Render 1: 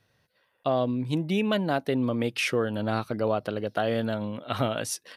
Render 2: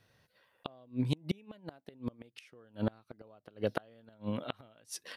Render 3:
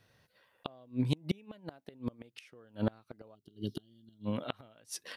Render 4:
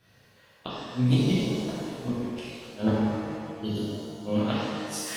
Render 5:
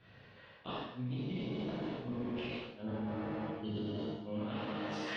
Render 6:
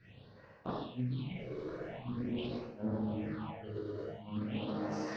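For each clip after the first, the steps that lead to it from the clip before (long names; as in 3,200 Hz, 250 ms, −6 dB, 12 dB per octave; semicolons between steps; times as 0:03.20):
gate with flip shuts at −18 dBFS, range −32 dB
gain on a spectral selection 0:03.35–0:04.26, 410–2,800 Hz −24 dB; level +1 dB
reverb with rising layers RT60 1.9 s, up +7 semitones, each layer −8 dB, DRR −9.5 dB
low-pass filter 3,600 Hz 24 dB per octave; reversed playback; downward compressor 16 to 1, threshold −35 dBFS, peak gain reduction 19 dB; reversed playback; brickwall limiter −32 dBFS, peak gain reduction 9.5 dB; level +1.5 dB
all-pass phaser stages 6, 0.45 Hz, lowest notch 200–3,300 Hz; transient designer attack +4 dB, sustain 0 dB; highs frequency-modulated by the lows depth 0.18 ms; level +1.5 dB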